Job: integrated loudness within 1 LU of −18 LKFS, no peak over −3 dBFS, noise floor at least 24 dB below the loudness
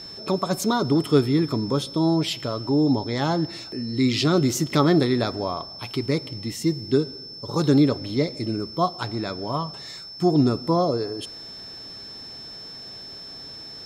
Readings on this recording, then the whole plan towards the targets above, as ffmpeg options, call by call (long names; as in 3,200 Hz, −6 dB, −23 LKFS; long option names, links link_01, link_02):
interfering tone 5,300 Hz; level of the tone −37 dBFS; integrated loudness −23.5 LKFS; sample peak −4.5 dBFS; target loudness −18.0 LKFS
→ -af "bandreject=frequency=5300:width=30"
-af "volume=5.5dB,alimiter=limit=-3dB:level=0:latency=1"